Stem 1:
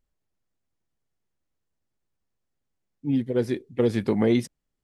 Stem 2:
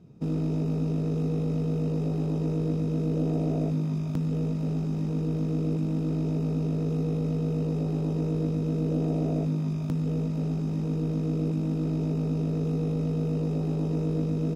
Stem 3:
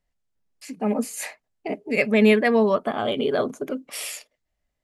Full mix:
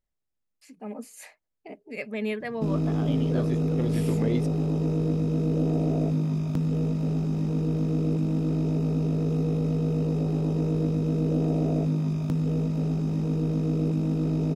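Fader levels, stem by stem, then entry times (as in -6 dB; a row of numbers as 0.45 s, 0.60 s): -8.5 dB, +2.0 dB, -13.5 dB; 0.00 s, 2.40 s, 0.00 s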